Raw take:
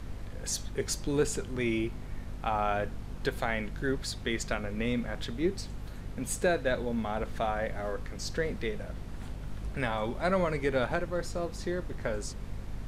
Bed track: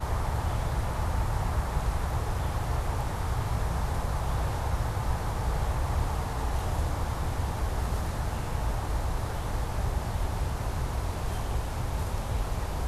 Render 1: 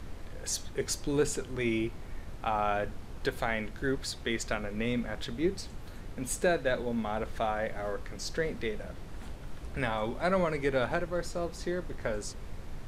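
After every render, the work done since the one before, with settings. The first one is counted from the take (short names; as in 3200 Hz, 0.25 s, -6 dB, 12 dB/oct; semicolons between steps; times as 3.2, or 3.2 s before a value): notches 50/100/150/200/250 Hz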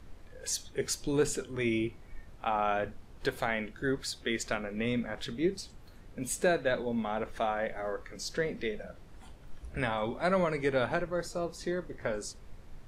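noise print and reduce 9 dB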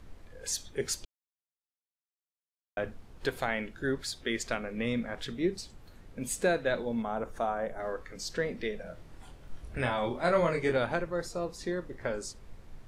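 1.05–2.77 mute; 7.02–7.8 band shelf 2900 Hz -9 dB; 8.83–10.77 doubler 24 ms -3.5 dB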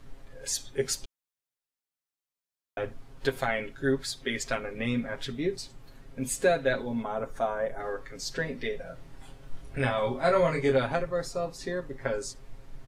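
comb 7.4 ms, depth 83%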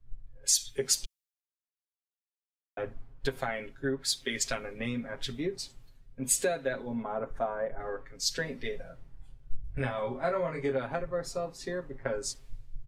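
compressor 6:1, threshold -29 dBFS, peak gain reduction 10.5 dB; three-band expander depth 100%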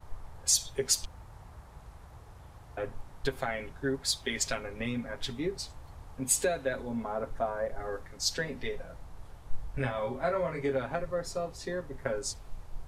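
add bed track -21 dB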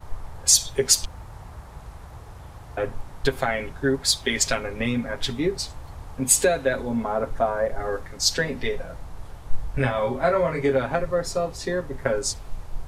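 gain +9 dB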